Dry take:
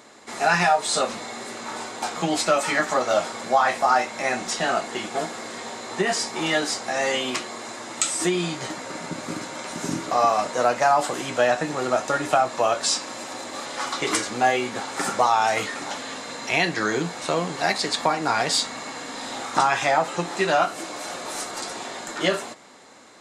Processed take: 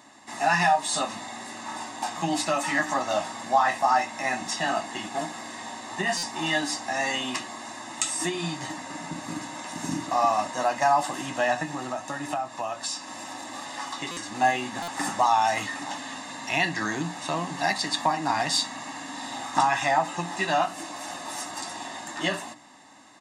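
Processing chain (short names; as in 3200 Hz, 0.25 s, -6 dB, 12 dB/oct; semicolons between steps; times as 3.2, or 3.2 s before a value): HPF 64 Hz; notches 60/120/180/240/300 Hz; comb 1.1 ms, depth 76%; 11.63–14.35 compressor 2:1, threshold -28 dBFS, peak gain reduction 8.5 dB; small resonant body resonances 290/1300 Hz, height 9 dB, ringing for 90 ms; stuck buffer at 6.17/14.11/14.82, samples 256, times 9; gain -5 dB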